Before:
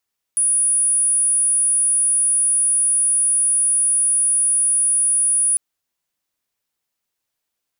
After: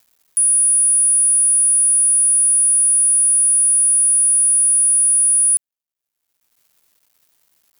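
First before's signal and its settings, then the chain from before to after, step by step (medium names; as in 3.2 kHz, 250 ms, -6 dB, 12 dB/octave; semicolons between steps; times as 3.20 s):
tone sine 9.76 kHz -14 dBFS 5.20 s
companding laws mixed up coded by A; treble shelf 9 kHz +6.5 dB; upward compressor, threshold -32 dBFS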